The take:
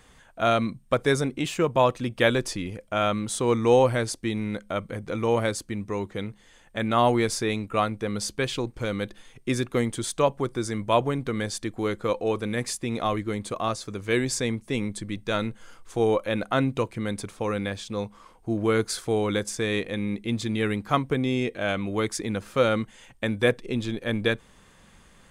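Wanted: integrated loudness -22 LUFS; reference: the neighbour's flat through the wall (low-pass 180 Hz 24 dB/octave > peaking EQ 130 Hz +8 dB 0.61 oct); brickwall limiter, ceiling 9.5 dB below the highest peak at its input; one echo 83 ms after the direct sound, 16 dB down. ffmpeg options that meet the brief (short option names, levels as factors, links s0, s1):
-af "alimiter=limit=0.158:level=0:latency=1,lowpass=f=180:w=0.5412,lowpass=f=180:w=1.3066,equalizer=f=130:t=o:w=0.61:g=8,aecho=1:1:83:0.158,volume=3.16"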